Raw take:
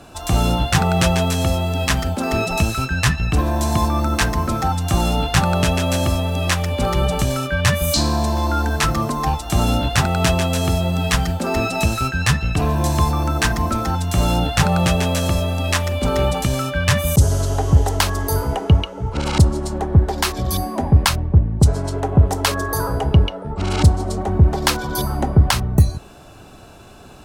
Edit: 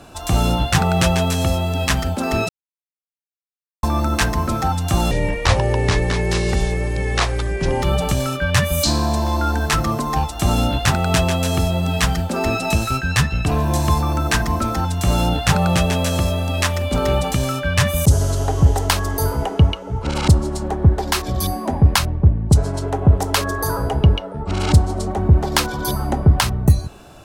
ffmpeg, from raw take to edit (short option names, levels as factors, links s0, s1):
-filter_complex "[0:a]asplit=5[s0][s1][s2][s3][s4];[s0]atrim=end=2.49,asetpts=PTS-STARTPTS,afade=t=out:st=2.486:d=0.004:c=hsin[s5];[s1]atrim=start=2.49:end=3.83,asetpts=PTS-STARTPTS,volume=0[s6];[s2]atrim=start=3.83:end=5.114,asetpts=PTS-STARTPTS,afade=t=in:d=0.004:c=hsin[s7];[s3]atrim=start=5.11:end=6.93,asetpts=PTS-STARTPTS,asetrate=29547,aresample=44100,atrim=end_sample=119794,asetpts=PTS-STARTPTS[s8];[s4]atrim=start=6.926[s9];[s5][s6][s7]concat=n=3:v=0:a=1[s10];[s10][s8]acrossfade=d=0.004:c1=hsin:c2=hsin[s11];[s11][s9]acrossfade=d=0.004:c1=hsin:c2=hsin"